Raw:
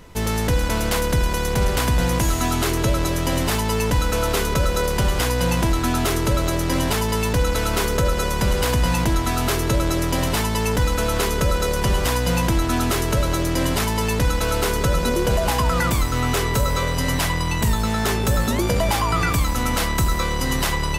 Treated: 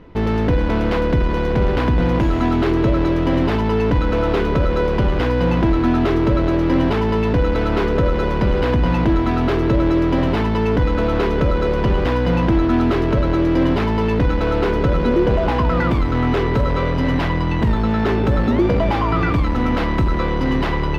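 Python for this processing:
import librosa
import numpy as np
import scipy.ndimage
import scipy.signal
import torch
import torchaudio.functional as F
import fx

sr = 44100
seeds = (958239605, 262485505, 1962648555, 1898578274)

p1 = fx.peak_eq(x, sr, hz=310.0, db=7.5, octaves=1.1)
p2 = fx.schmitt(p1, sr, flips_db=-30.5)
p3 = p1 + F.gain(torch.from_numpy(p2), -10.0).numpy()
y = fx.air_absorb(p3, sr, metres=330.0)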